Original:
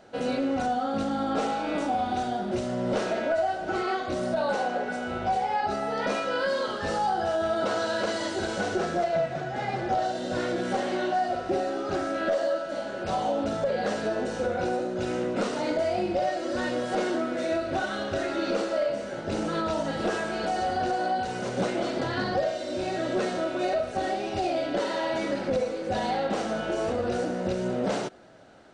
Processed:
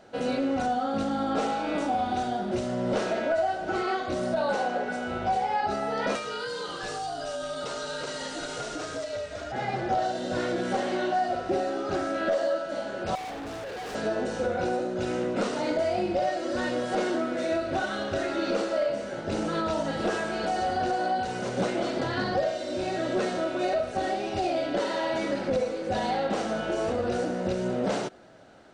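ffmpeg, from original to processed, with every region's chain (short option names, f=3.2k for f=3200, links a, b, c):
-filter_complex "[0:a]asettb=1/sr,asplit=3[a][b][c];[a]atrim=end=6.154[d];[b]atrim=start=6.15:end=9.52,asetpts=PTS-STARTPTS,afade=t=in:d=0.004:c=qsin,afade=t=out:st=3.366:d=0.004:c=qsin,highshelf=f=4.4k:g=10,acrossover=split=490|3300[e][f][g];[e]acompressor=threshold=-45dB:ratio=4[h];[f]acompressor=threshold=-34dB:ratio=4[i];[g]acompressor=threshold=-42dB:ratio=4[j];[h][i][j]amix=inputs=3:normalize=0,afreqshift=-66[k];[c]atrim=start=9.516[l];[d][k]acrossfade=d=0.004:c1=hsin:c2=qsin[m];[m][l]acrossfade=d=0.004:c1=qsin:c2=hsin,asettb=1/sr,asplit=3[n][o][p];[n]atrim=end=13.154[q];[o]atrim=start=13.15:end=13.95,asetpts=PTS-STARTPTS,afade=t=in:d=0.004:c=qsin,afade=t=out:st=0.796:d=0.004:c=qsin,aecho=1:1:2.6:0.68,atrim=end_sample=35280,volume=35dB,asoftclip=hard,volume=-35dB[r];[p]atrim=start=13.946[s];[q][r]acrossfade=d=0.004:c1=hsin:c2=qsin[t];[t][s]acrossfade=d=0.004:c1=qsin:c2=hsin"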